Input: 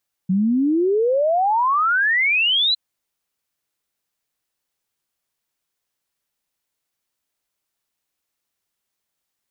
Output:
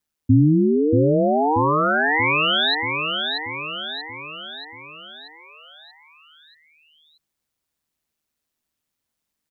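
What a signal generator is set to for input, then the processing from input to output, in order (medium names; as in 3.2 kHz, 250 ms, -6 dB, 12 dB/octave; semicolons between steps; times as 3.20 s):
log sweep 180 Hz -> 4.1 kHz 2.46 s -15 dBFS
peaking EQ 150 Hz +10.5 dB 1.5 oct; ring modulator 77 Hz; on a send: feedback delay 633 ms, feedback 54%, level -5 dB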